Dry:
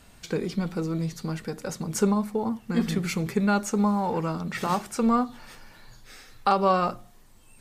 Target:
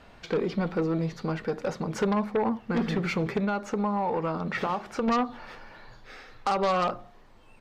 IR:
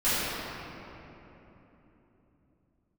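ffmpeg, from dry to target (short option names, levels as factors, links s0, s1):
-filter_complex "[0:a]firequalizer=gain_entry='entry(150,0);entry(490,8);entry(4700,-3);entry(8500,-17)':delay=0.05:min_phase=1,asettb=1/sr,asplit=3[s0][s1][s2];[s0]atrim=end=3.444[s3];[s1]atrim=start=3.44:end=5.08,asetpts=PTS-STARTPTS,afade=t=in:d=0.004:c=qsin,afade=t=out:st=1.636:d=0.004:c=qsin,acompressor=threshold=0.0794:ratio=12[s4];[s2]atrim=start=5.076[s5];[s3][s4]acrossfade=d=0.004:c1=hsin:c2=qsin[s6];[s6][s5]acrossfade=d=0.004:c1=qsin:c2=hsin,alimiter=limit=0.266:level=0:latency=1:release=170,aeval=exprs='0.266*(cos(1*acos(clip(val(0)/0.266,-1,1)))-cos(1*PI/2))+0.0596*(cos(5*acos(clip(val(0)/0.266,-1,1)))-cos(5*PI/2))+0.0168*(cos(7*acos(clip(val(0)/0.266,-1,1)))-cos(7*PI/2))':c=same,volume=0.531"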